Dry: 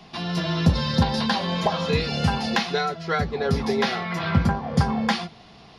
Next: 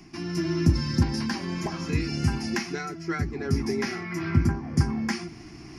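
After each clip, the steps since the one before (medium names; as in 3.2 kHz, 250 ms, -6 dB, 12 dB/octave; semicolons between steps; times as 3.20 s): FFT filter 130 Hz 0 dB, 200 Hz -7 dB, 330 Hz +10 dB, 480 Hz -18 dB, 2.3 kHz -3 dB, 3.7 kHz -22 dB, 5.3 kHz +1 dB; reverse; upward compressor, threshold -34 dBFS; reverse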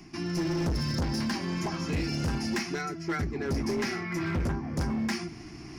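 hard clipper -25.5 dBFS, distortion -6 dB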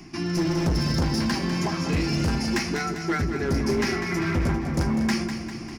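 feedback delay 199 ms, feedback 57%, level -9 dB; trim +5 dB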